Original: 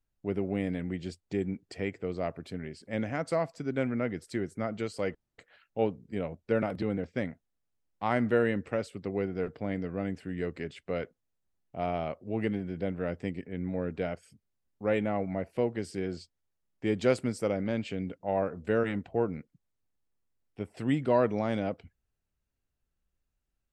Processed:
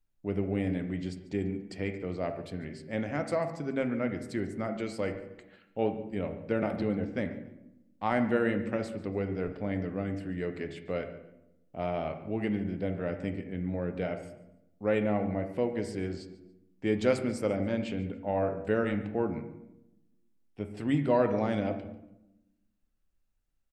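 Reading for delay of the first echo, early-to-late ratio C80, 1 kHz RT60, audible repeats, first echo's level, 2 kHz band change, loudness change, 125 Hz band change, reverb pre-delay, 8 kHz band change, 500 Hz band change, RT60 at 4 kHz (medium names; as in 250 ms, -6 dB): 143 ms, 11.5 dB, 0.80 s, 2, -19.0 dB, 0.0 dB, 0.0 dB, +0.5 dB, 3 ms, no reading, -0.5 dB, 0.55 s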